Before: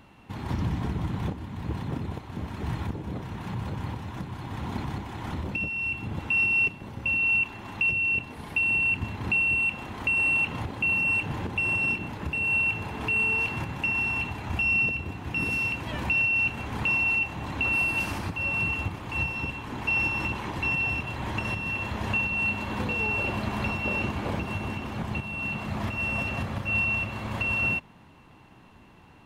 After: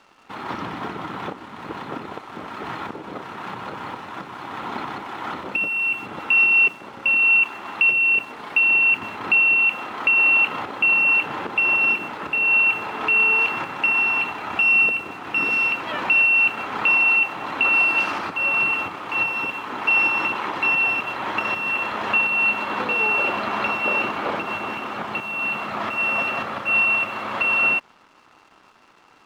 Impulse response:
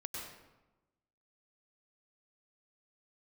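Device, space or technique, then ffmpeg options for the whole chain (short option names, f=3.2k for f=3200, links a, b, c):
pocket radio on a weak battery: -af "highpass=390,lowpass=4k,aeval=exprs='sgn(val(0))*max(abs(val(0))-0.00106,0)':c=same,equalizer=f=1.3k:t=o:w=0.27:g=9,volume=8.5dB"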